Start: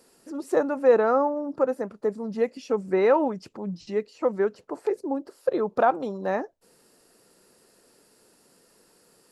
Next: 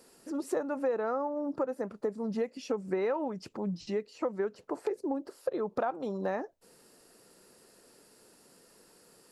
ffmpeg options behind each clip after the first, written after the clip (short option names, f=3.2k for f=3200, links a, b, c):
-af "acompressor=threshold=-29dB:ratio=5"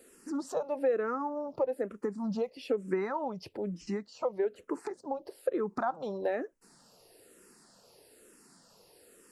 -filter_complex "[0:a]asplit=2[a][b];[b]afreqshift=-1.1[c];[a][c]amix=inputs=2:normalize=1,volume=3dB"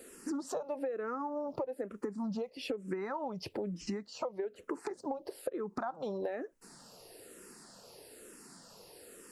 -af "acompressor=threshold=-39dB:ratio=12,volume=5.5dB"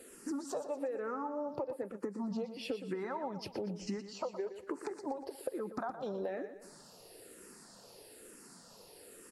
-filter_complex "[0:a]asplit=2[a][b];[b]aecho=0:1:119|238|357|476|595:0.282|0.127|0.0571|0.0257|0.0116[c];[a][c]amix=inputs=2:normalize=0,volume=-1.5dB" -ar 48000 -c:a libvorbis -b:a 64k